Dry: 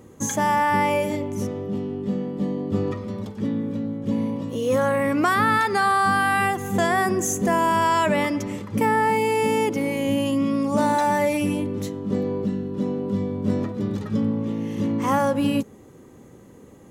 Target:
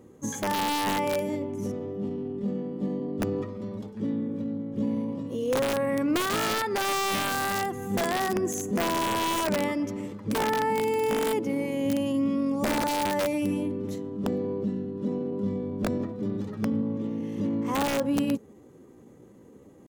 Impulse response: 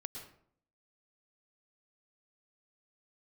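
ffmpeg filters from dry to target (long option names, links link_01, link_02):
-af "aeval=exprs='(mod(4.47*val(0)+1,2)-1)/4.47':channel_layout=same,atempo=0.85,equalizer=frequency=340:width_type=o:width=2.3:gain=6,volume=-9dB"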